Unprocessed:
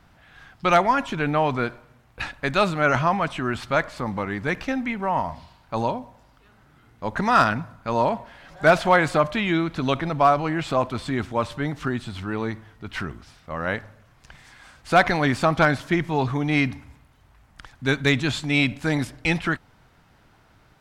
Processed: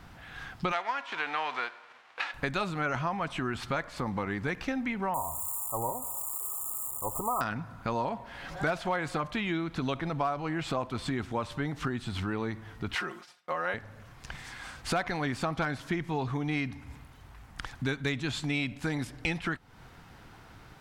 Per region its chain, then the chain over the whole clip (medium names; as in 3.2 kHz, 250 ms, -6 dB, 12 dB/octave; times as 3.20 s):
0.71–2.33 s: formants flattened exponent 0.6 + band-pass 730–3000 Hz
5.14–7.41 s: zero-crossing glitches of -16.5 dBFS + brick-wall FIR band-stop 1.3–6.8 kHz + peaking EQ 200 Hz -13 dB 0.76 oct
12.95–13.74 s: expander -41 dBFS + high-pass 410 Hz + comb 5.6 ms, depth 95%
whole clip: band-stop 610 Hz, Q 12; compression 4:1, threshold -36 dBFS; trim +5 dB